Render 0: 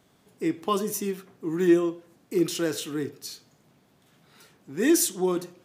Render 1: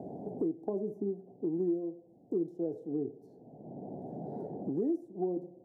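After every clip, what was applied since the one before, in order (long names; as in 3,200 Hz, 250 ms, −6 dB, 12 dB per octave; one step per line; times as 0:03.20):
elliptic low-pass filter 760 Hz, stop band 40 dB
low-shelf EQ 99 Hz −11 dB
multiband upward and downward compressor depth 100%
level −6 dB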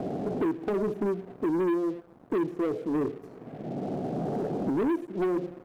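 leveller curve on the samples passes 3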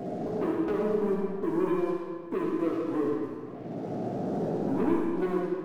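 spectral magnitudes quantised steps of 15 dB
chorus effect 1.7 Hz, delay 15.5 ms, depth 2.7 ms
convolution reverb RT60 1.7 s, pre-delay 15 ms, DRR −1.5 dB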